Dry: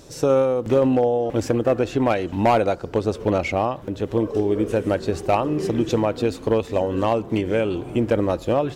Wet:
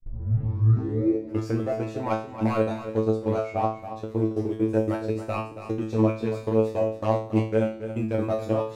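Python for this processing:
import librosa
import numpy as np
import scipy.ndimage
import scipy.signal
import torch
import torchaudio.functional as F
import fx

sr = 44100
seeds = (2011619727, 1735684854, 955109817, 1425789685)

y = fx.tape_start_head(x, sr, length_s=1.55)
y = fx.level_steps(y, sr, step_db=21)
y = fx.peak_eq(y, sr, hz=3100.0, db=-7.5, octaves=0.25)
y = fx.comb_fb(y, sr, f0_hz=110.0, decay_s=0.41, harmonics='all', damping=0.0, mix_pct=100)
y = y + 10.0 ** (-11.0 / 20.0) * np.pad(y, (int(278 * sr / 1000.0), 0))[:len(y)]
y = F.gain(torch.from_numpy(y), 8.5).numpy()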